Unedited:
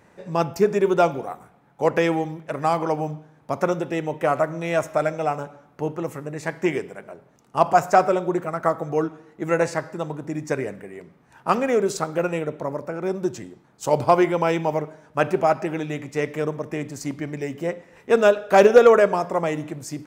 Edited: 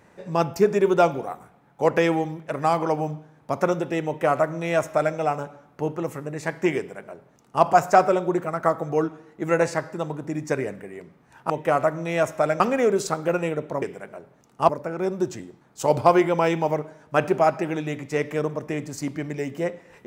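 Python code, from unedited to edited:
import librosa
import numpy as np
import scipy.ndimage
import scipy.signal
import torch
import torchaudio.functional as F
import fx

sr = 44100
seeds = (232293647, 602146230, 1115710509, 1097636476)

y = fx.edit(x, sr, fx.duplicate(start_s=4.06, length_s=1.1, to_s=11.5),
    fx.duplicate(start_s=6.77, length_s=0.87, to_s=12.72), tone=tone)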